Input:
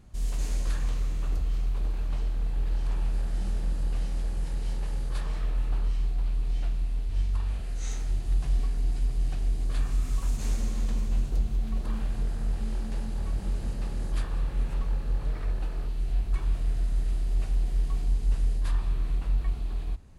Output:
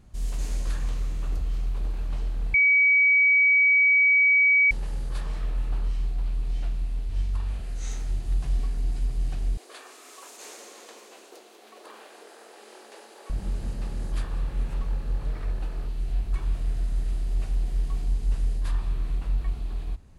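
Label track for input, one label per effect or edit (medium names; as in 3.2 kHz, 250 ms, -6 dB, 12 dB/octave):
2.540000	4.710000	bleep 2.27 kHz -15.5 dBFS
9.570000	13.300000	steep high-pass 360 Hz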